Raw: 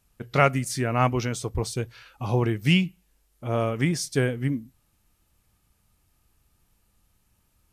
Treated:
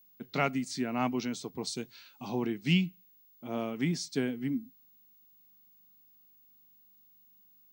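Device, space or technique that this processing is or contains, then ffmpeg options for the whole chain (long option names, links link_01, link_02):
old television with a line whistle: -filter_complex "[0:a]asettb=1/sr,asplit=3[link_01][link_02][link_03];[link_01]atrim=end=1.674[link_04];[link_02]atrim=start=1.67:end=2.29,asetpts=PTS-STARTPTS,afade=type=in:duration=0.004:curve=qsin,afade=type=out:start_time=0.616:duration=0.004:curve=qsin,aemphasis=mode=production:type=cd[link_05];[link_03]atrim=start=2.286[link_06];[link_04][link_05]acrossfade=duration=0.004:curve1=hsin:curve2=qsin[link_07];[link_07][link_06]acrossfade=duration=0.004:curve1=qsin:curve2=hsin,highpass=frequency=170:width=0.5412,highpass=frequency=170:width=1.3066,equalizer=frequency=170:width_type=q:width=4:gain=4,equalizer=frequency=250:width_type=q:width=4:gain=6,equalizer=frequency=530:width_type=q:width=4:gain=-7,equalizer=frequency=1200:width_type=q:width=4:gain=-5,equalizer=frequency=1700:width_type=q:width=4:gain=-4,equalizer=frequency=4100:width_type=q:width=4:gain=6,lowpass=frequency=7500:width=0.5412,lowpass=frequency=7500:width=1.3066,aeval=exprs='val(0)+0.00251*sin(2*PI*15625*n/s)':channel_layout=same,volume=-7dB"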